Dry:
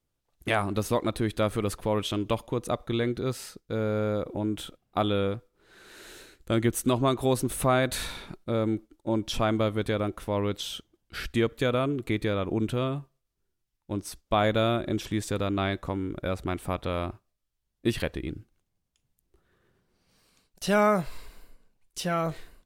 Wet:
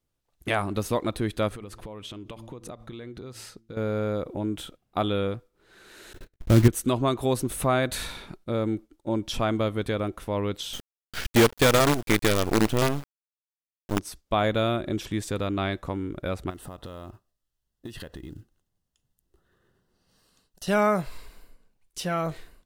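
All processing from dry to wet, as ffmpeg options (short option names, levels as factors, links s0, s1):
-filter_complex "[0:a]asettb=1/sr,asplit=3[s0][s1][s2];[s0]atrim=end=1.484[s3];[s1]atrim=start=1.48:end=3.77,asetpts=PTS-STARTPTS,afade=t=in:d=0.004:c=qsin,afade=t=out:st=2.286:d=0.004:c=qsin,highshelf=f=11000:g=-8,bandreject=f=112.3:t=h:w=4,bandreject=f=224.6:t=h:w=4,bandreject=f=336.9:t=h:w=4,acompressor=threshold=0.0178:ratio=12:attack=3.2:release=140:knee=1:detection=peak[s4];[s2]atrim=start=3.766[s5];[s3][s4]acrossfade=d=0.004:c1=hsin:c2=qsin[s6];[s6][s5]acrossfade=d=0.004:c1=qsin:c2=hsin,asettb=1/sr,asplit=3[s7][s8][s9];[s7]atrim=end=6.134[s10];[s8]atrim=start=6.13:end=6.68,asetpts=PTS-STARTPTS,afade=t=in:d=0.004:c=qsin,afade=t=out:st=0.546:d=0.004:c=qsin,aemphasis=mode=reproduction:type=riaa,agate=range=0.0158:threshold=0.00794:ratio=16:release=100:detection=peak,acrusher=bits=4:mode=log:mix=0:aa=0.000001[s11];[s9]atrim=start=6.676[s12];[s10][s11]acrossfade=d=0.004:c1=hsin:c2=qsin[s13];[s13][s12]acrossfade=d=0.004:c1=qsin:c2=hsin,asettb=1/sr,asplit=3[s14][s15][s16];[s14]atrim=end=10.734[s17];[s15]atrim=start=10.73:end=13.99,asetpts=PTS-STARTPTS,afade=t=in:d=0.004:c=qsin,afade=t=out:st=3.256:d=0.004:c=qsin,acontrast=53,acrusher=bits=4:dc=4:mix=0:aa=0.000001[s18];[s16]atrim=start=13.986[s19];[s17][s18]acrossfade=d=0.004:c1=hsin:c2=qsin[s20];[s20][s19]acrossfade=d=0.004:c1=qsin:c2=hsin,asettb=1/sr,asplit=3[s21][s22][s23];[s21]atrim=end=16.504[s24];[s22]atrim=start=16.5:end=20.68,asetpts=PTS-STARTPTS,afade=t=in:d=0.004:c=qsin,afade=t=out:st=4.176:d=0.004:c=qsin,acompressor=threshold=0.02:ratio=12:attack=3.2:release=140:knee=1:detection=peak,acrusher=bits=7:mode=log:mix=0:aa=0.000001,asuperstop=centerf=2300:order=4:qfactor=5.2[s25];[s23]atrim=start=20.676[s26];[s24][s25]acrossfade=d=0.004:c1=hsin:c2=qsin[s27];[s27][s26]acrossfade=d=0.004:c1=qsin:c2=hsin"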